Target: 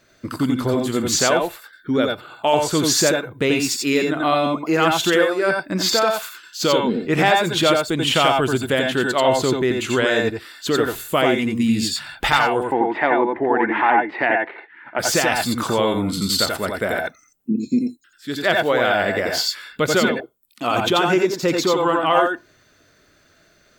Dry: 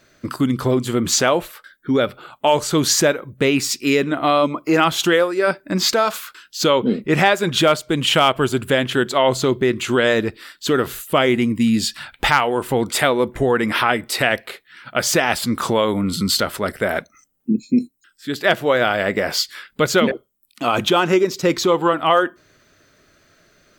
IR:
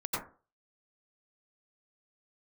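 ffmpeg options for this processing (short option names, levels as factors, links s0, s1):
-filter_complex "[0:a]asplit=3[s0][s1][s2];[s0]afade=t=out:st=12.62:d=0.02[s3];[s1]highpass=270,equalizer=f=320:t=q:w=4:g=9,equalizer=f=500:t=q:w=4:g=-4,equalizer=f=870:t=q:w=4:g=10,equalizer=f=1300:t=q:w=4:g=-5,equalizer=f=1900:t=q:w=4:g=5,lowpass=f=2200:w=0.5412,lowpass=f=2200:w=1.3066,afade=t=in:st=12.62:d=0.02,afade=t=out:st=14.98:d=0.02[s4];[s2]afade=t=in:st=14.98:d=0.02[s5];[s3][s4][s5]amix=inputs=3:normalize=0[s6];[1:a]atrim=start_sample=2205,atrim=end_sample=3969[s7];[s6][s7]afir=irnorm=-1:irlink=0"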